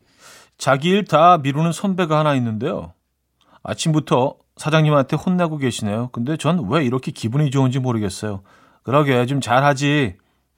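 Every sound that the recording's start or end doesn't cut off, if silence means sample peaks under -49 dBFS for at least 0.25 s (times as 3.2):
3.41–10.2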